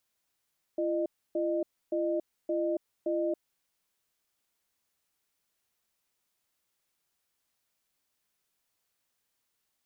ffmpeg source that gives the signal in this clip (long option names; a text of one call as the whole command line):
ffmpeg -f lavfi -i "aevalsrc='0.0335*(sin(2*PI*340*t)+sin(2*PI*611*t))*clip(min(mod(t,0.57),0.28-mod(t,0.57))/0.005,0,1)':duration=2.56:sample_rate=44100" out.wav